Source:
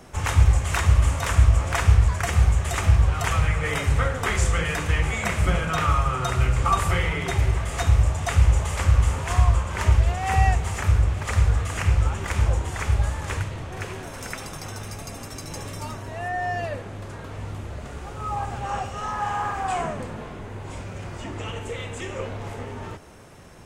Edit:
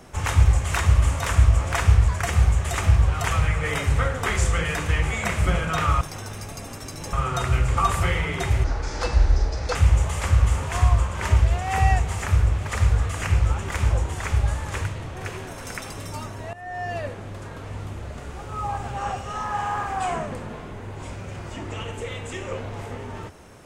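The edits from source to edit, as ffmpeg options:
-filter_complex "[0:a]asplit=7[a][b][c][d][e][f][g];[a]atrim=end=6.012[h];[b]atrim=start=14.508:end=15.632[i];[c]atrim=start=6.008:end=7.524[j];[d]atrim=start=7.52:end=8.31,asetpts=PTS-STARTPTS,asetrate=31311,aresample=44100,atrim=end_sample=49069,asetpts=PTS-STARTPTS[k];[e]atrim=start=8.306:end=14.512[l];[f]atrim=start=15.628:end=16.21,asetpts=PTS-STARTPTS,afade=t=out:st=0.578:d=0.004:c=hsin:silence=0.158489[m];[g]atrim=start=16.21,asetpts=PTS-STARTPTS,afade=t=in:d=0.46:silence=0.158489[n];[h][i]acrossfade=d=0.004:c1=hsin:c2=hsin[o];[o][j]acrossfade=d=0.004:c1=hsin:c2=hsin[p];[p][k]acrossfade=d=0.004:c1=hsin:c2=hsin[q];[q][l]acrossfade=d=0.004:c1=hsin:c2=hsin[r];[m][n]concat=n=2:v=0:a=1[s];[r][s]acrossfade=d=0.004:c1=hsin:c2=hsin"

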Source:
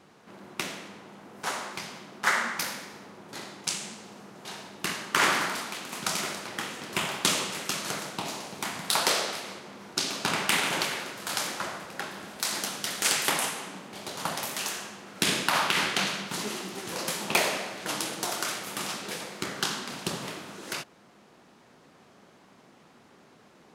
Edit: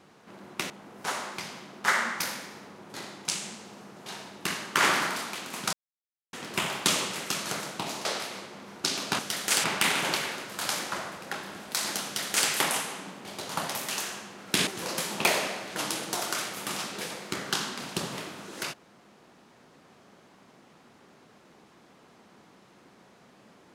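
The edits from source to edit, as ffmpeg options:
-filter_complex "[0:a]asplit=8[a][b][c][d][e][f][g][h];[a]atrim=end=0.702[i];[b]atrim=start=1.088:end=6.12,asetpts=PTS-STARTPTS,afade=t=out:st=5.028:d=0.004:c=hsin[j];[c]atrim=start=6.12:end=6.72,asetpts=PTS-STARTPTS,volume=0[k];[d]atrim=start=6.72:end=8.442,asetpts=PTS-STARTPTS,afade=t=in:d=0.004:c=hsin[l];[e]atrim=start=9.178:end=10.322[m];[f]atrim=start=12.728:end=13.182[n];[g]atrim=start=10.318:end=15.352[o];[h]atrim=start=16.768[p];[j][k][l]concat=n=3:v=0:a=1[q];[i][q]acrossfade=d=0.004:c1=hsin:c2=hsin[r];[r][m]acrossfade=d=0.004:c1=hsin:c2=hsin[s];[s][n]acrossfade=d=0.004:c1=hsin:c2=hsin[t];[t][o]acrossfade=d=0.004:c1=hsin:c2=hsin[u];[u][p]acrossfade=d=0.004:c1=hsin:c2=hsin"

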